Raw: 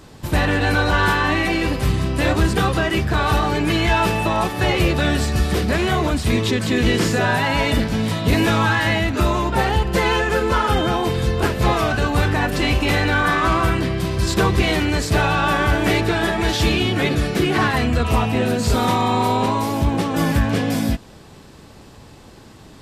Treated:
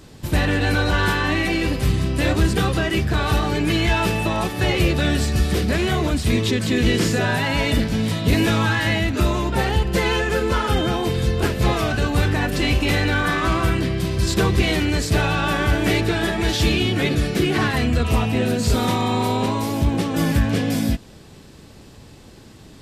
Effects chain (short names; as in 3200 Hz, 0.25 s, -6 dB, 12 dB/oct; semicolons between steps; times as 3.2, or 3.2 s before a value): bell 980 Hz -5.5 dB 1.5 oct